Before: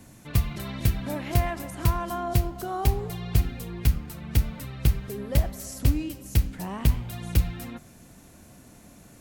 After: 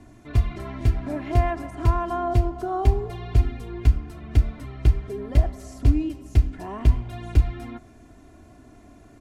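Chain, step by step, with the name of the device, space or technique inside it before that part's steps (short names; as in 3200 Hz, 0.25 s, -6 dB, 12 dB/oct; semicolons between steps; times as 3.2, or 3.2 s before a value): through cloth (LPF 9200 Hz 12 dB/oct; high shelf 2400 Hz -13 dB); comb 2.9 ms, depth 72%; gain +1.5 dB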